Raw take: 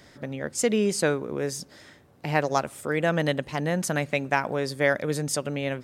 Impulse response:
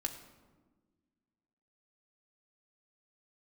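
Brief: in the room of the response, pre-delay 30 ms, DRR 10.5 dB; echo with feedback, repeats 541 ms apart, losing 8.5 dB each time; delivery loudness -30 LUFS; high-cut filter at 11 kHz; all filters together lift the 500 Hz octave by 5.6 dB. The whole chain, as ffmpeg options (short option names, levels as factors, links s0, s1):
-filter_complex "[0:a]lowpass=11000,equalizer=f=500:t=o:g=6.5,aecho=1:1:541|1082|1623|2164:0.376|0.143|0.0543|0.0206,asplit=2[s0][s1];[1:a]atrim=start_sample=2205,adelay=30[s2];[s1][s2]afir=irnorm=-1:irlink=0,volume=0.282[s3];[s0][s3]amix=inputs=2:normalize=0,volume=0.422"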